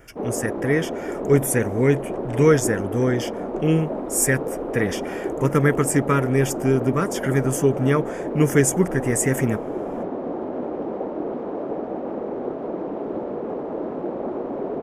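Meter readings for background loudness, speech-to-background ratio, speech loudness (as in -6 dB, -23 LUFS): -29.0 LUFS, 7.0 dB, -22.0 LUFS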